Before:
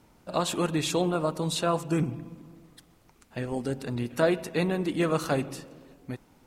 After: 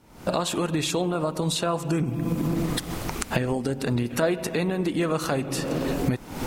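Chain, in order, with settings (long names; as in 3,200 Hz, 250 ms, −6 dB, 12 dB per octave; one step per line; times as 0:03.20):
camcorder AGC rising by 75 dB per second
0:02.06–0:02.46: high-shelf EQ 6,800 Hz → 11,000 Hz +9 dB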